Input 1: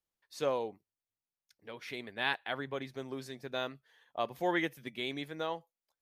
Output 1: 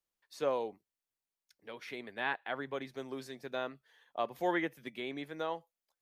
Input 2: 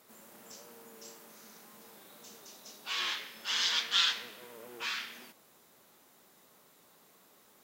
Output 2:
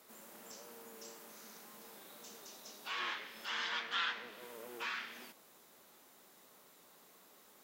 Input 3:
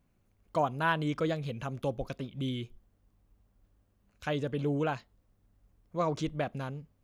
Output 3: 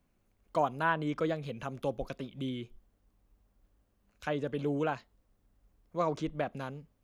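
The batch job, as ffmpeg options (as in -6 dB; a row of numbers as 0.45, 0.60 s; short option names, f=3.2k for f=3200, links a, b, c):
-filter_complex "[0:a]acrossover=split=110|2300[a][b][c];[c]acompressor=threshold=-50dB:ratio=6[d];[a][b][d]amix=inputs=3:normalize=0,equalizer=f=110:t=o:w=1.3:g=-6.5"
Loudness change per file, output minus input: -1.0, -11.0, -1.0 LU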